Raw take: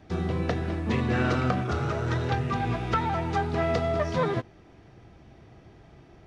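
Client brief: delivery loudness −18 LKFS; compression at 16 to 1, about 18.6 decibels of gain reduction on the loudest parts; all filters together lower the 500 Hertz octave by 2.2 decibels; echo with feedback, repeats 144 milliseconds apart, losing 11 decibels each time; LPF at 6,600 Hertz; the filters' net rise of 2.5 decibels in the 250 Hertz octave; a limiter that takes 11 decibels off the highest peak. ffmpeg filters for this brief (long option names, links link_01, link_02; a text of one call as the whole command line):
ffmpeg -i in.wav -af "lowpass=6600,equalizer=frequency=250:width_type=o:gain=4.5,equalizer=frequency=500:width_type=o:gain=-4.5,acompressor=threshold=-39dB:ratio=16,alimiter=level_in=14.5dB:limit=-24dB:level=0:latency=1,volume=-14.5dB,aecho=1:1:144|288|432:0.282|0.0789|0.0221,volume=29.5dB" out.wav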